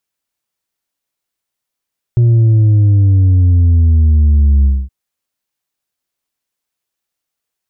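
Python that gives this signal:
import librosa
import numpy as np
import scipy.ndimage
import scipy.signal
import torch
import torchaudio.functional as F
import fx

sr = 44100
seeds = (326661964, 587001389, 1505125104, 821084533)

y = fx.sub_drop(sr, level_db=-6.5, start_hz=120.0, length_s=2.72, drive_db=3.5, fade_s=0.24, end_hz=65.0)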